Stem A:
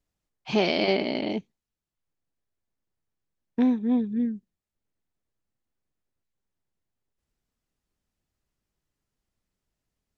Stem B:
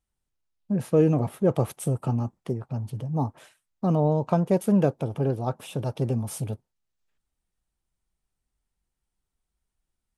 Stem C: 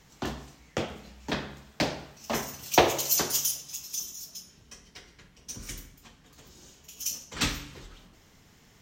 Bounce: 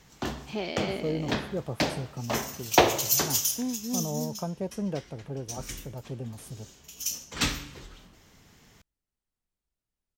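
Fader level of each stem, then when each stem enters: -10.0 dB, -11.0 dB, +1.0 dB; 0.00 s, 0.10 s, 0.00 s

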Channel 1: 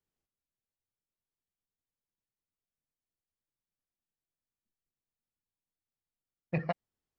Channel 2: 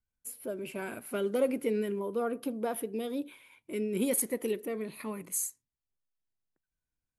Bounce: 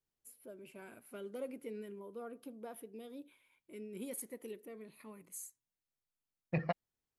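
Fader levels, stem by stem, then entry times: -2.5 dB, -14.5 dB; 0.00 s, 0.00 s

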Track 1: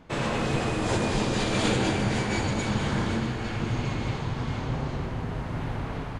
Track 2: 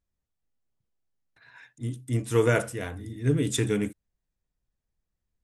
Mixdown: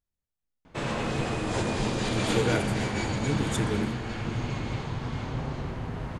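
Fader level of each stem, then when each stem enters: -2.5 dB, -5.5 dB; 0.65 s, 0.00 s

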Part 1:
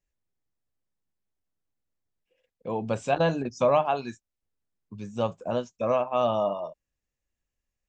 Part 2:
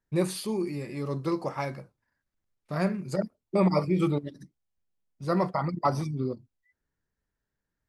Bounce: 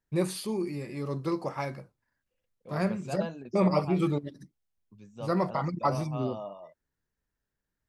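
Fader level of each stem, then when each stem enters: -13.5 dB, -1.5 dB; 0.00 s, 0.00 s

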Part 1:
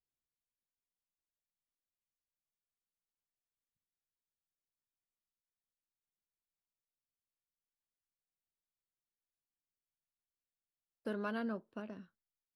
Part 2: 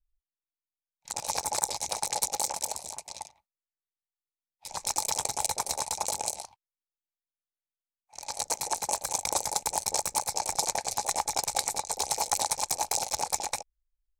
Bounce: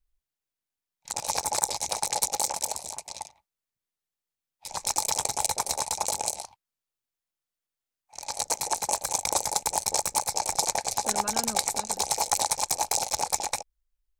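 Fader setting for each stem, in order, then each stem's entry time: +0.5 dB, +2.5 dB; 0.00 s, 0.00 s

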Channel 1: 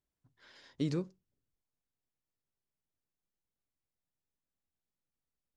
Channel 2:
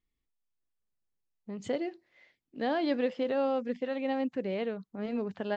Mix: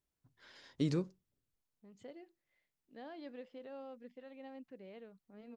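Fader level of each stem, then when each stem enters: 0.0 dB, -19.5 dB; 0.00 s, 0.35 s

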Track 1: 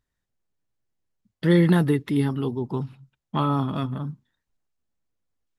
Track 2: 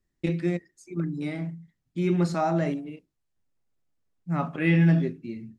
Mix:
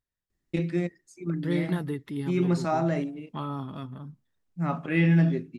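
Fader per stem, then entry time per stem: -10.5 dB, -1.0 dB; 0.00 s, 0.30 s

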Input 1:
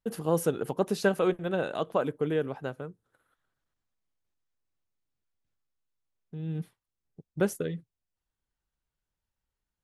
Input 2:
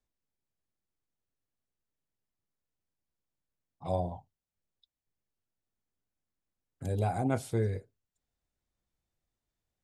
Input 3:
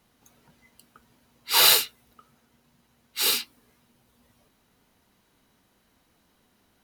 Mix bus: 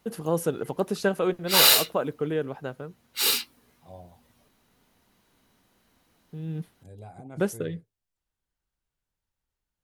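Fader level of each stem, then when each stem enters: +0.5 dB, -14.5 dB, 0.0 dB; 0.00 s, 0.00 s, 0.00 s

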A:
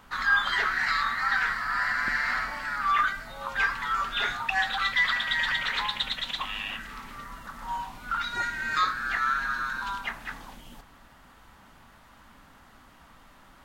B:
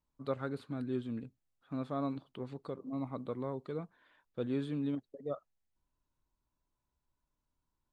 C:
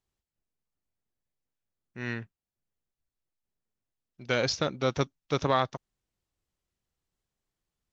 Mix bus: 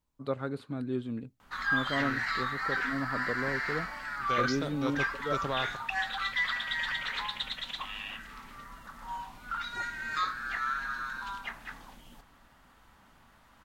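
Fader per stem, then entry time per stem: -6.0 dB, +3.0 dB, -8.0 dB; 1.40 s, 0.00 s, 0.00 s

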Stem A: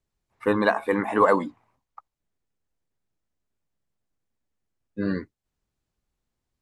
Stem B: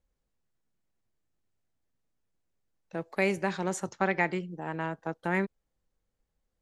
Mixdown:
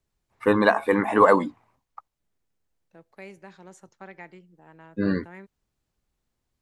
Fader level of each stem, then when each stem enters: +2.5 dB, -16.0 dB; 0.00 s, 0.00 s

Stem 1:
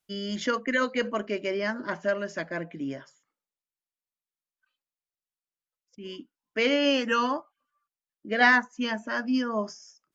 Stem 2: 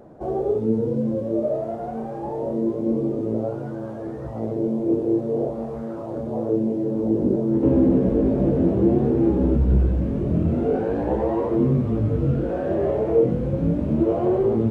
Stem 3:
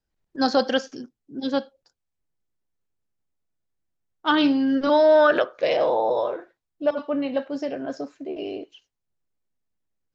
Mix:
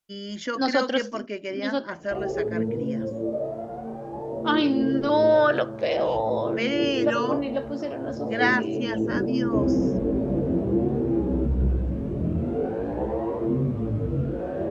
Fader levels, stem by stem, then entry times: -2.5 dB, -5.0 dB, -3.0 dB; 0.00 s, 1.90 s, 0.20 s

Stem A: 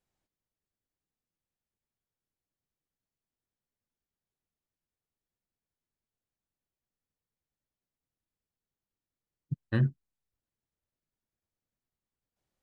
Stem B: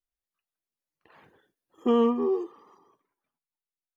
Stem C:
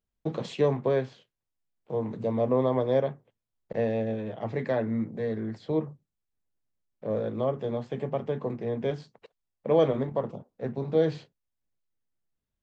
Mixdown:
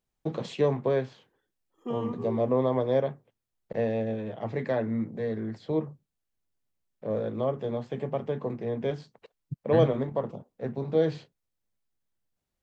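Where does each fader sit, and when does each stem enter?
-2.0 dB, -11.0 dB, -0.5 dB; 0.00 s, 0.00 s, 0.00 s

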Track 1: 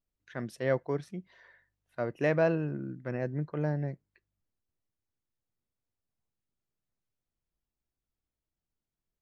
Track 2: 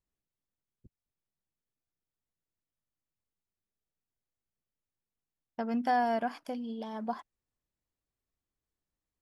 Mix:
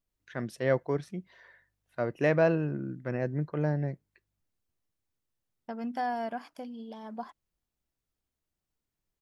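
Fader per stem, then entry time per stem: +2.0 dB, -4.0 dB; 0.00 s, 0.10 s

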